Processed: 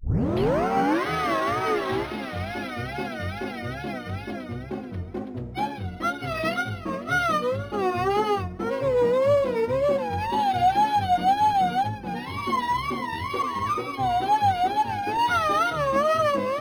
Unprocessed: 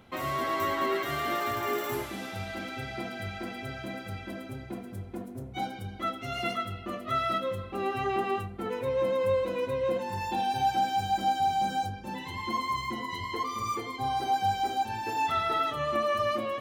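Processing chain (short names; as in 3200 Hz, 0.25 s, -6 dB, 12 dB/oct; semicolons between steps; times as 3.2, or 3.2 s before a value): tape start at the beginning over 1.07 s; wow and flutter 150 cents; decimation joined by straight lines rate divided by 6×; gain +6.5 dB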